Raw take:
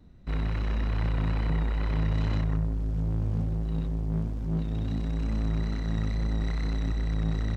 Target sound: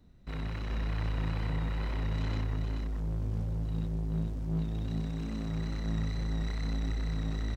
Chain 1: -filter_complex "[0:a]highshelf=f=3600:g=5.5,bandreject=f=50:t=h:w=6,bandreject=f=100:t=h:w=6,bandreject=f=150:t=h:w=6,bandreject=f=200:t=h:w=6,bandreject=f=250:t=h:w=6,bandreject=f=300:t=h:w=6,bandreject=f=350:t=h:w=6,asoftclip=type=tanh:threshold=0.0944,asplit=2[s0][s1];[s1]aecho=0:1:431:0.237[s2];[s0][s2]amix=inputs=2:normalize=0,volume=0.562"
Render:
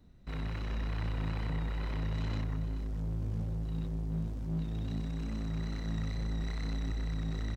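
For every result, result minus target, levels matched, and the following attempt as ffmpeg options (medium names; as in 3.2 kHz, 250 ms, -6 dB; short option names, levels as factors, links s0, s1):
saturation: distortion +22 dB; echo-to-direct -7 dB
-filter_complex "[0:a]highshelf=f=3600:g=5.5,bandreject=f=50:t=h:w=6,bandreject=f=100:t=h:w=6,bandreject=f=150:t=h:w=6,bandreject=f=200:t=h:w=6,bandreject=f=250:t=h:w=6,bandreject=f=300:t=h:w=6,bandreject=f=350:t=h:w=6,asoftclip=type=tanh:threshold=0.376,asplit=2[s0][s1];[s1]aecho=0:1:431:0.237[s2];[s0][s2]amix=inputs=2:normalize=0,volume=0.562"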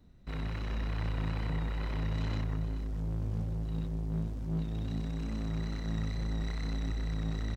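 echo-to-direct -7 dB
-filter_complex "[0:a]highshelf=f=3600:g=5.5,bandreject=f=50:t=h:w=6,bandreject=f=100:t=h:w=6,bandreject=f=150:t=h:w=6,bandreject=f=200:t=h:w=6,bandreject=f=250:t=h:w=6,bandreject=f=300:t=h:w=6,bandreject=f=350:t=h:w=6,asoftclip=type=tanh:threshold=0.376,asplit=2[s0][s1];[s1]aecho=0:1:431:0.531[s2];[s0][s2]amix=inputs=2:normalize=0,volume=0.562"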